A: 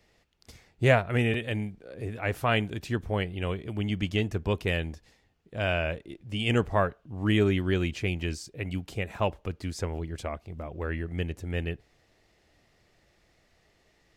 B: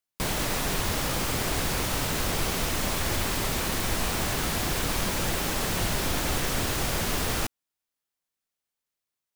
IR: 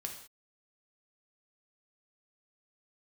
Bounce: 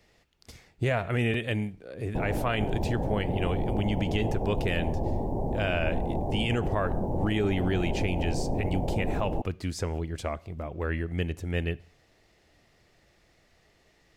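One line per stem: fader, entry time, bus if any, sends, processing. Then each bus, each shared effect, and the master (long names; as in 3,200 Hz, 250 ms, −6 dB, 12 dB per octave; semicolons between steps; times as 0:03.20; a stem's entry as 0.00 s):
+1.0 dB, 0.00 s, send −15 dB, no processing
+2.0 dB, 1.95 s, no send, elliptic low-pass filter 840 Hz, stop band 40 dB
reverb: on, pre-delay 3 ms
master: brickwall limiter −17.5 dBFS, peak gain reduction 10.5 dB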